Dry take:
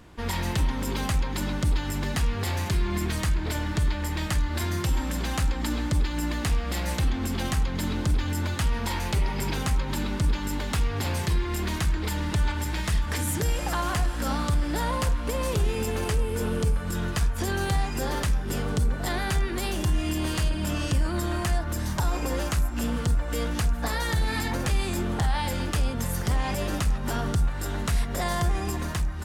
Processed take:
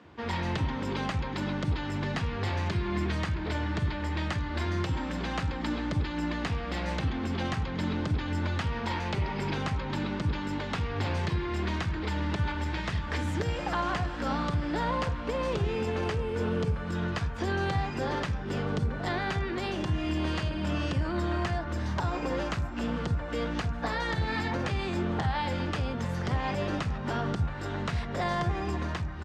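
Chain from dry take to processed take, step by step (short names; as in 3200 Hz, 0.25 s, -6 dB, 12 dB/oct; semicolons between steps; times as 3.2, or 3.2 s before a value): HPF 72 Hz 24 dB/oct; air absorption 170 m; bands offset in time highs, lows 40 ms, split 160 Hz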